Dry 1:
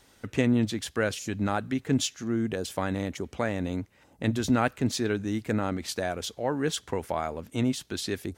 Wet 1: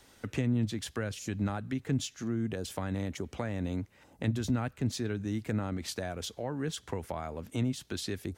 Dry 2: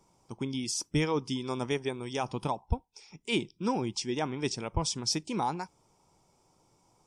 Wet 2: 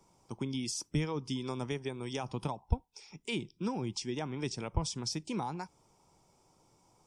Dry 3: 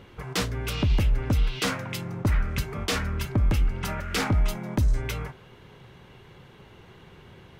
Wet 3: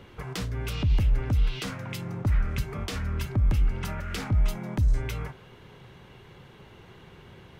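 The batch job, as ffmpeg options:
-filter_complex "[0:a]acrossover=split=180[s0][s1];[s1]acompressor=threshold=0.0178:ratio=4[s2];[s0][s2]amix=inputs=2:normalize=0"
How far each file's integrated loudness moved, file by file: -5.5 LU, -4.5 LU, -1.5 LU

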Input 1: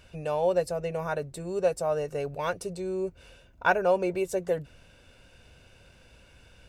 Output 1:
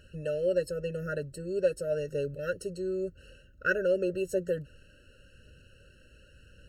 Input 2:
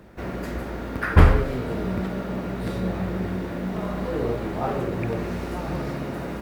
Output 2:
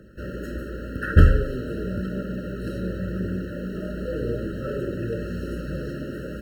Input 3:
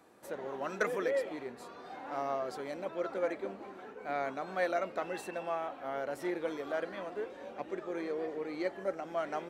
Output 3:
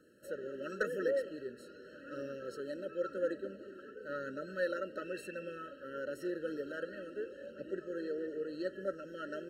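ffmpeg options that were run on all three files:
-af "aphaser=in_gain=1:out_gain=1:delay=3.4:decay=0.23:speed=0.91:type=triangular,afftfilt=real='re*eq(mod(floor(b*sr/1024/640),2),0)':imag='im*eq(mod(floor(b*sr/1024/640),2),0)':win_size=1024:overlap=0.75,volume=0.841"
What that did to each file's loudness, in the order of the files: -2.5 LU, -1.0 LU, -3.0 LU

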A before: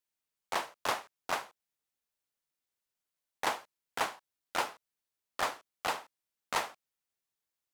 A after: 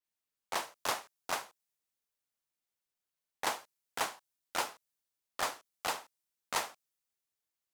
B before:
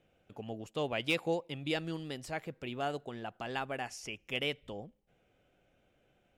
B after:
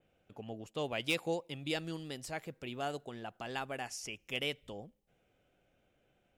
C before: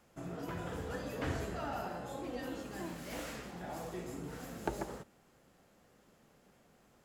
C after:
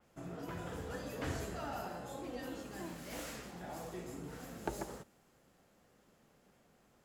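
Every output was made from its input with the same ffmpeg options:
-af "adynamicequalizer=threshold=0.00251:dfrequency=4200:dqfactor=0.7:tfrequency=4200:tqfactor=0.7:attack=5:release=100:ratio=0.375:range=3.5:mode=boostabove:tftype=highshelf,volume=0.75"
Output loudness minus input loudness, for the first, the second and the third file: -1.5 LU, -2.0 LU, -2.5 LU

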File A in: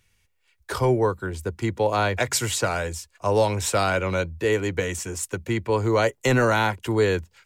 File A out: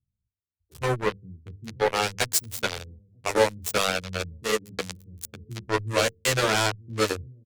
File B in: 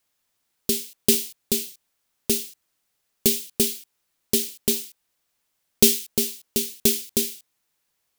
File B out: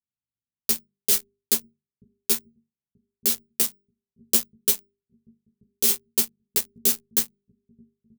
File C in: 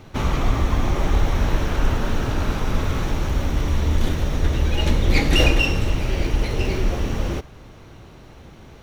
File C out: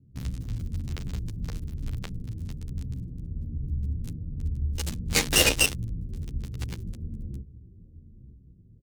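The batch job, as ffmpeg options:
-filter_complex "[0:a]highpass=f=140:p=1,bandreject=f=50:t=h:w=6,bandreject=f=100:t=h:w=6,bandreject=f=150:t=h:w=6,bandreject=f=200:t=h:w=6,bandreject=f=250:t=h:w=6,bandreject=f=300:t=h:w=6,bandreject=f=350:t=h:w=6,bandreject=f=400:t=h:w=6,bandreject=f=450:t=h:w=6,bandreject=f=500:t=h:w=6,asplit=2[s0][s1];[s1]adelay=933,lowpass=f=4800:p=1,volume=0.158,asplit=2[s2][s3];[s3]adelay=933,lowpass=f=4800:p=1,volume=0.39,asplit=2[s4][s5];[s5]adelay=933,lowpass=f=4800:p=1,volume=0.39[s6];[s0][s2][s4][s6]amix=inputs=4:normalize=0,acrossover=split=200[s7][s8];[s8]acrusher=bits=2:mix=0:aa=0.5[s9];[s7][s9]amix=inputs=2:normalize=0,aeval=exprs='1.06*(cos(1*acos(clip(val(0)/1.06,-1,1)))-cos(1*PI/2))+0.237*(cos(3*acos(clip(val(0)/1.06,-1,1)))-cos(3*PI/2))':c=same,highshelf=f=3800:g=9.5,asplit=2[s10][s11];[s11]acompressor=threshold=0.0398:ratio=6,volume=0.841[s12];[s10][s12]amix=inputs=2:normalize=0,equalizer=f=470:t=o:w=0.3:g=6,alimiter=level_in=1.78:limit=0.891:release=50:level=0:latency=1,asplit=2[s13][s14];[s14]adelay=11.3,afreqshift=-1.1[s15];[s13][s15]amix=inputs=2:normalize=1"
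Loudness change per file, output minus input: -2.5 LU, -1.0 LU, -7.0 LU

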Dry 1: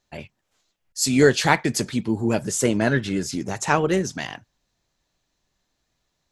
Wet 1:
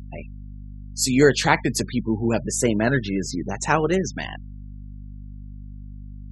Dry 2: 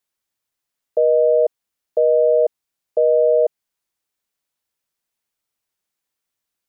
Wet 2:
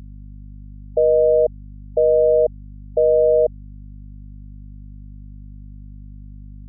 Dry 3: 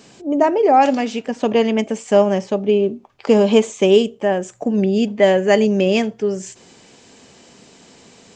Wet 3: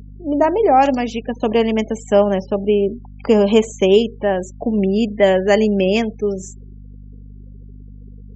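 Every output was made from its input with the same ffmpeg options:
-af "afftfilt=real='re*gte(hypot(re,im),0.0224)':imag='im*gte(hypot(re,im),0.0224)':win_size=1024:overlap=0.75,aeval=exprs='val(0)+0.0158*(sin(2*PI*50*n/s)+sin(2*PI*2*50*n/s)/2+sin(2*PI*3*50*n/s)/3+sin(2*PI*4*50*n/s)/4+sin(2*PI*5*50*n/s)/5)':c=same"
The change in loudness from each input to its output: 0.0 LU, 0.0 LU, 0.0 LU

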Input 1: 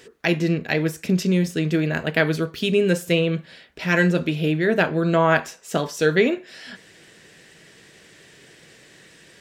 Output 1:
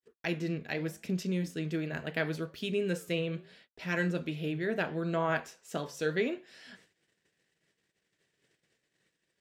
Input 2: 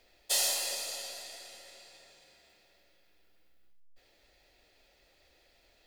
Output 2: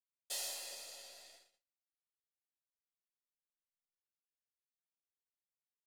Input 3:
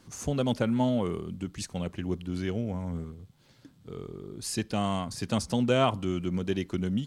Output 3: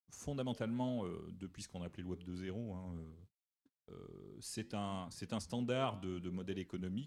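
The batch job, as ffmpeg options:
-af "flanger=delay=3.1:depth=7.9:regen=-89:speed=0.76:shape=triangular,agate=range=0.00501:threshold=0.00282:ratio=16:detection=peak,volume=0.398"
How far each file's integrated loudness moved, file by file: -12.5 LU, -11.5 LU, -12.5 LU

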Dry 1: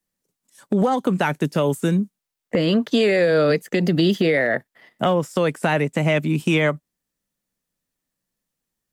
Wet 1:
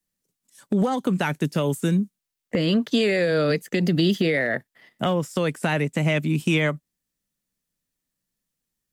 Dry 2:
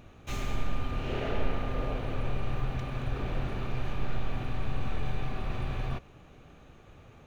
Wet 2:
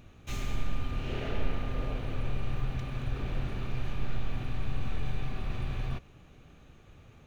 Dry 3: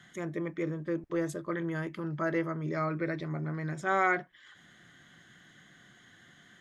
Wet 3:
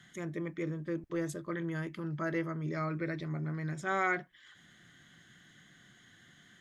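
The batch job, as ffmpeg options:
-af "equalizer=f=730:w=0.5:g=-5.5"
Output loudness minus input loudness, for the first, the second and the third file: -3.0 LU, -1.5 LU, -3.0 LU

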